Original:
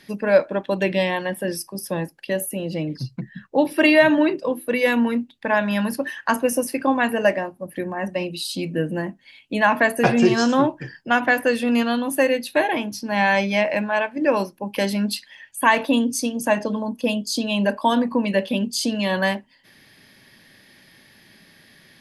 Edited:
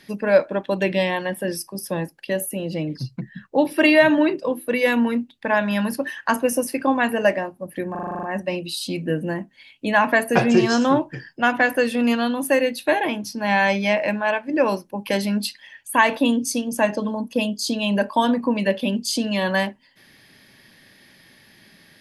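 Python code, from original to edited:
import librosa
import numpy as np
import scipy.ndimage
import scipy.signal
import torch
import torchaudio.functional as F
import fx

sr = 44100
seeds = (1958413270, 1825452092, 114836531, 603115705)

y = fx.edit(x, sr, fx.stutter(start_s=7.91, slice_s=0.04, count=9), tone=tone)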